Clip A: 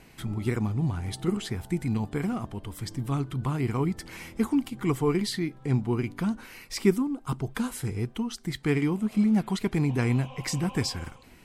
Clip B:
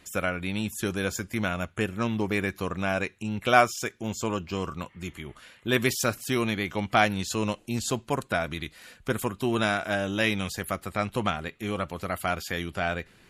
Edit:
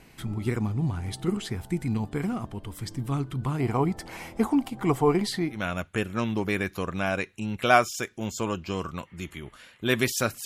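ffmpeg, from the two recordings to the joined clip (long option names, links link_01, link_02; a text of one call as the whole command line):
ffmpeg -i cue0.wav -i cue1.wav -filter_complex "[0:a]asettb=1/sr,asplit=3[link_01][link_02][link_03];[link_01]atrim=end=3.594[link_04];[link_02]atrim=start=3.59:end=5.67,asetpts=PTS-STARTPTS,afade=type=in:duration=0.004:curve=qsin,afade=type=out:start_time=2.076:duration=0.004:curve=qsin,equalizer=frequency=720:width=1.4:gain=11.5[link_05];[link_03]atrim=start=5.666[link_06];[link_04][link_05]acrossfade=duration=0.004:curve1=hsin:curve2=qsin[link_07];[link_07][link_06]acrossfade=duration=0.004:curve1=qsin:curve2=hsin,apad=whole_dur=10.45,atrim=end=10.45,atrim=end=5.67,asetpts=PTS-STARTPTS[link_08];[1:a]atrim=start=1.32:end=6.28,asetpts=PTS-STARTPTS[link_09];[link_08][link_09]acrossfade=duration=0.18:curve1=tri:curve2=tri" out.wav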